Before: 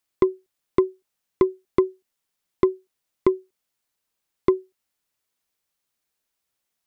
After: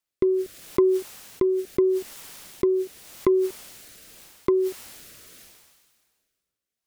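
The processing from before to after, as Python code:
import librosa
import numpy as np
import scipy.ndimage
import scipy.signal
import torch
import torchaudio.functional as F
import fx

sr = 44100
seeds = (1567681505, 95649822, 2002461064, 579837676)

y = fx.rotary(x, sr, hz=0.8)
y = fx.sustainer(y, sr, db_per_s=34.0)
y = y * 10.0 ** (-1.5 / 20.0)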